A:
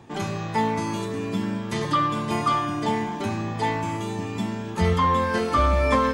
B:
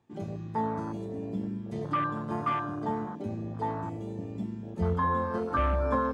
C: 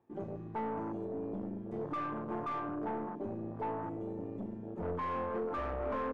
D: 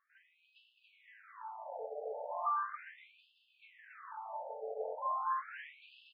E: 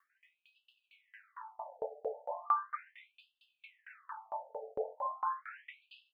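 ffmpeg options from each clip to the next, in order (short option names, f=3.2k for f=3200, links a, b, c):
-af "afwtdn=0.0631,volume=-6.5dB"
-af "aeval=exprs='(tanh(39.8*val(0)+0.3)-tanh(0.3))/39.8':c=same,firequalizer=gain_entry='entry(140,0);entry(350,9);entry(4100,-11)':delay=0.05:min_phase=1,volume=-6.5dB"
-af "alimiter=level_in=10.5dB:limit=-24dB:level=0:latency=1:release=380,volume=-10.5dB,aecho=1:1:280|518|720.3|892.3|1038:0.631|0.398|0.251|0.158|0.1,afftfilt=real='re*between(b*sr/1024,590*pow(3700/590,0.5+0.5*sin(2*PI*0.37*pts/sr))/1.41,590*pow(3700/590,0.5+0.5*sin(2*PI*0.37*pts/sr))*1.41)':imag='im*between(b*sr/1024,590*pow(3700/590,0.5+0.5*sin(2*PI*0.37*pts/sr))/1.41,590*pow(3700/590,0.5+0.5*sin(2*PI*0.37*pts/sr))*1.41)':win_size=1024:overlap=0.75,volume=8dB"
-af "aeval=exprs='val(0)*pow(10,-31*if(lt(mod(4.4*n/s,1),2*abs(4.4)/1000),1-mod(4.4*n/s,1)/(2*abs(4.4)/1000),(mod(4.4*n/s,1)-2*abs(4.4)/1000)/(1-2*abs(4.4)/1000))/20)':c=same,volume=8.5dB"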